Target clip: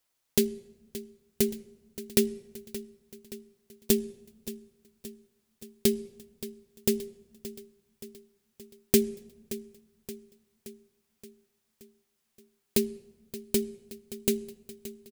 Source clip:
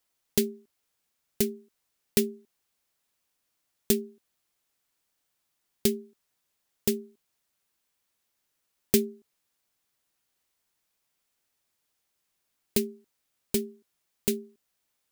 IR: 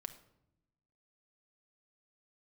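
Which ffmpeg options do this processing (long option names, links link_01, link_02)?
-filter_complex "[0:a]aecho=1:1:574|1148|1722|2296|2870|3444:0.178|0.107|0.064|0.0384|0.023|0.0138,asplit=2[link_01][link_02];[1:a]atrim=start_sample=2205,asetrate=23373,aresample=44100,adelay=8[link_03];[link_02][link_03]afir=irnorm=-1:irlink=0,volume=-11dB[link_04];[link_01][link_04]amix=inputs=2:normalize=0"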